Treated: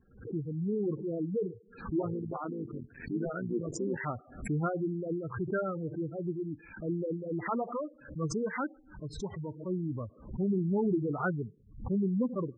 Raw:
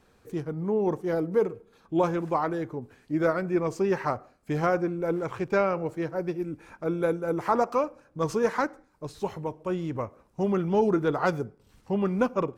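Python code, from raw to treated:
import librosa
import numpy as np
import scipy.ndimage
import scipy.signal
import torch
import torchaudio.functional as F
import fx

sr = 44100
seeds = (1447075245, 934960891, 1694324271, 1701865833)

y = fx.cycle_switch(x, sr, every=3, mode='muted', at=(2.0, 4.01))
y = fx.spec_gate(y, sr, threshold_db=-10, keep='strong')
y = fx.graphic_eq(y, sr, hz=(500, 1000, 2000, 4000), db=(-8, -11, 9, -9))
y = fx.pre_swell(y, sr, db_per_s=120.0)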